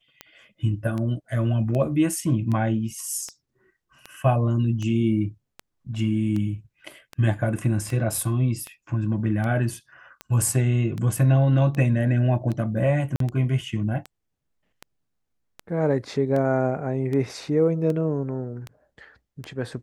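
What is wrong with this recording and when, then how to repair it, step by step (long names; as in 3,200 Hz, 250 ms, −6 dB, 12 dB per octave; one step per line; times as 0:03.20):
scratch tick 78 rpm −19 dBFS
0:13.16–0:13.20: drop-out 43 ms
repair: click removal
repair the gap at 0:13.16, 43 ms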